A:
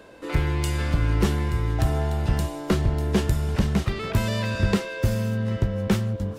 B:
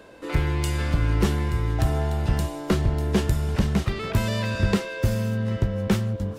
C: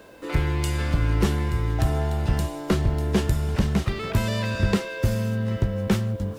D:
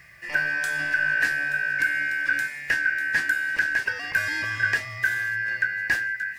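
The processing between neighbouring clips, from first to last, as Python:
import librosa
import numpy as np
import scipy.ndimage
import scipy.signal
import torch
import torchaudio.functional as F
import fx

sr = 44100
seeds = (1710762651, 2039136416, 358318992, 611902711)

y1 = x
y2 = fx.quant_dither(y1, sr, seeds[0], bits=10, dither='none')
y3 = fx.band_shuffle(y2, sr, order='2143')
y3 = F.gain(torch.from_numpy(y3), -2.5).numpy()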